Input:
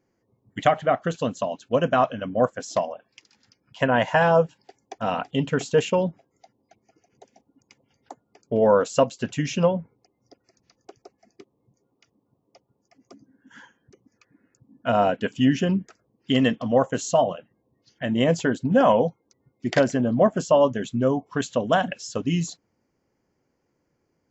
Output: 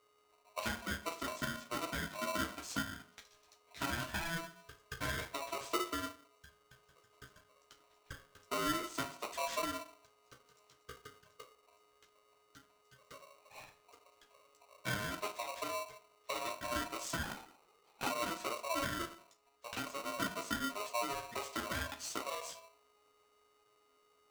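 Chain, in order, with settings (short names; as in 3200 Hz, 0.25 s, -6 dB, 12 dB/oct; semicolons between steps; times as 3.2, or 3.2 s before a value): 5.64–6.06 bell 460 Hz +15 dB 2.3 oct; compressor 12:1, threshold -30 dBFS, peak gain reduction 29.5 dB; chorus voices 6, 0.23 Hz, delay 14 ms, depth 4.8 ms; whine 410 Hz -69 dBFS; 19.04–19.87 bell 150 Hz -12 dB 2.4 oct; reverb RT60 0.45 s, pre-delay 5 ms, DRR 5 dB; 17.23–18.1 LPC vocoder at 8 kHz whisper; polarity switched at an audio rate 830 Hz; gain -3.5 dB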